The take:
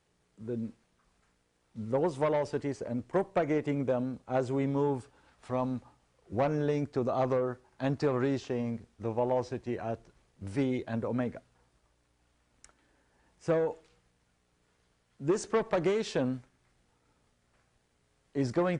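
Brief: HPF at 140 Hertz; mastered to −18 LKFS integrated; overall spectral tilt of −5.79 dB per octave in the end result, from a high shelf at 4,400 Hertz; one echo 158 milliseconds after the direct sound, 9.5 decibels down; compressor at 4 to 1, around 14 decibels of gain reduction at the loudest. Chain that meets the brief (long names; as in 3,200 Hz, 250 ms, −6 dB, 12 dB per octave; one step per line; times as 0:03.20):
high-pass filter 140 Hz
high-shelf EQ 4,400 Hz +5 dB
downward compressor 4 to 1, threshold −41 dBFS
single-tap delay 158 ms −9.5 dB
level +26 dB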